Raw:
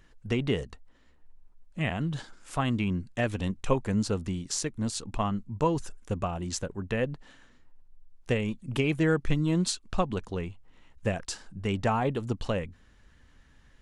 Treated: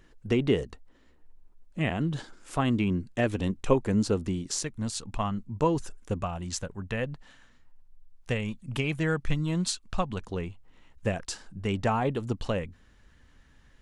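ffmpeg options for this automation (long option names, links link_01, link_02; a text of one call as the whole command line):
ffmpeg -i in.wav -af "asetnsamples=nb_out_samples=441:pad=0,asendcmd='4.63 equalizer g -4.5;5.37 equalizer g 2;6.22 equalizer g -6;10.2 equalizer g 0.5',equalizer=frequency=350:width_type=o:width=1.2:gain=5.5" out.wav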